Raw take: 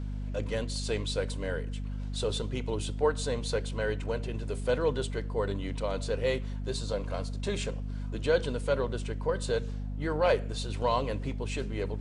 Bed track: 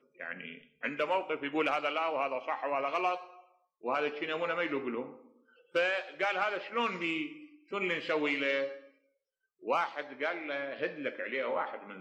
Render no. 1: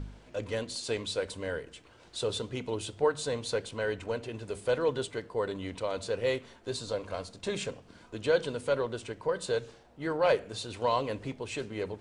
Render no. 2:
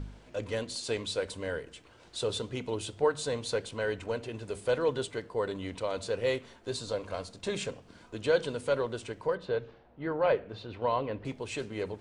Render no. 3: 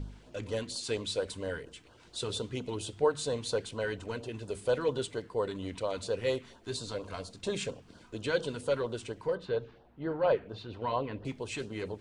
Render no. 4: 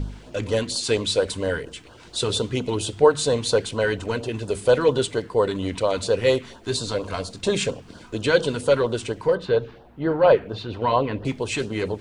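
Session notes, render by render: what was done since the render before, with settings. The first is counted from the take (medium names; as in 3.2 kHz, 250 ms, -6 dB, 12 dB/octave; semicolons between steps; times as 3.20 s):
de-hum 50 Hz, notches 5
9.35–11.25 s: distance through air 320 m
LFO notch sine 4.3 Hz 510–2300 Hz
trim +11.5 dB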